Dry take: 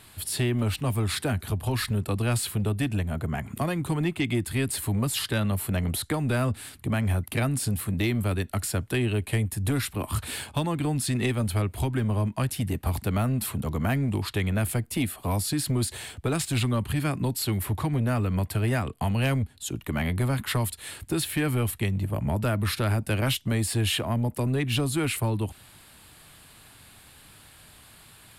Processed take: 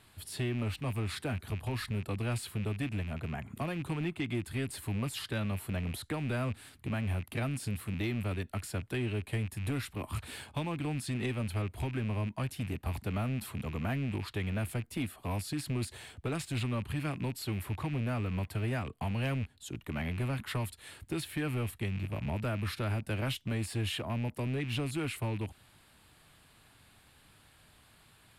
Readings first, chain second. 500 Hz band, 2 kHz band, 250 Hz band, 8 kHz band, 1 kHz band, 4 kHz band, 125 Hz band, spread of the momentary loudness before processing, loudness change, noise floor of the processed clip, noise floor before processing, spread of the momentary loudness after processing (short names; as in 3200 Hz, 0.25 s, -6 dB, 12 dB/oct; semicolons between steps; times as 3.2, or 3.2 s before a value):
-8.0 dB, -7.0 dB, -8.0 dB, -13.5 dB, -8.0 dB, -9.5 dB, -8.0 dB, 4 LU, -8.5 dB, -62 dBFS, -52 dBFS, 4 LU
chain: rattling part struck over -30 dBFS, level -27 dBFS; high shelf 5800 Hz -7.5 dB; gain -8 dB